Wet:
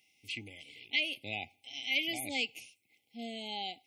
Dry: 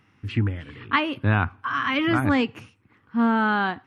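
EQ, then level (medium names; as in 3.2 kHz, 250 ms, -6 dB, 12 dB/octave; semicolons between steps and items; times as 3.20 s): brick-wall FIR band-stop 840–2000 Hz; differentiator; +6.5 dB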